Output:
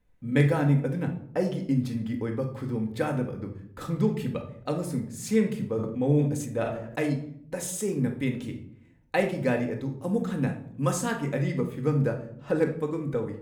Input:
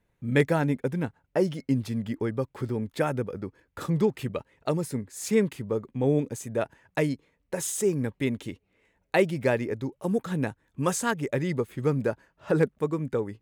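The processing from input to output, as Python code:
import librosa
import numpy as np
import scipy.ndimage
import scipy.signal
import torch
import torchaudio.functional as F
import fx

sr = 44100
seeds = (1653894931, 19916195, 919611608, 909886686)

y = fx.low_shelf(x, sr, hz=61.0, db=11.0)
y = fx.room_shoebox(y, sr, seeds[0], volume_m3=1000.0, walls='furnished', distance_m=2.0)
y = fx.sustainer(y, sr, db_per_s=51.0, at=(5.74, 7.09))
y = F.gain(torch.from_numpy(y), -4.0).numpy()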